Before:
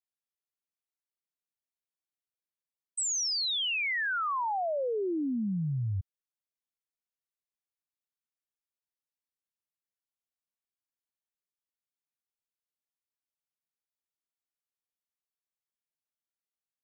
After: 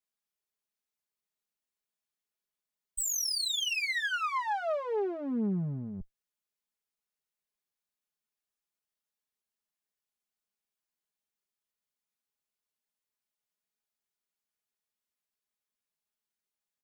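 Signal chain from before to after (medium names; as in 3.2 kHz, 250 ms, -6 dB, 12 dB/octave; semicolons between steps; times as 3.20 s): single-diode clipper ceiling -42 dBFS; comb 4.8 ms, depth 89%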